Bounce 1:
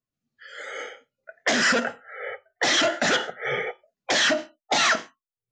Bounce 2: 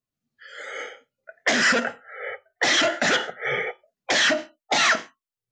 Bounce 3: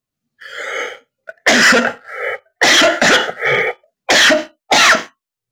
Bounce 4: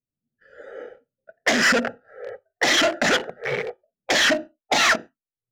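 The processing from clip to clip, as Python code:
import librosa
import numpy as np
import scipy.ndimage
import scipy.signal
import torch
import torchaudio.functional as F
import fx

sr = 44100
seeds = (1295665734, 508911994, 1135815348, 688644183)

y1 = fx.dynamic_eq(x, sr, hz=2100.0, q=1.9, threshold_db=-37.0, ratio=4.0, max_db=3)
y2 = fx.leveller(y1, sr, passes=1)
y2 = F.gain(torch.from_numpy(y2), 8.0).numpy()
y3 = fx.wiener(y2, sr, points=41)
y3 = F.gain(torch.from_numpy(y3), -6.5).numpy()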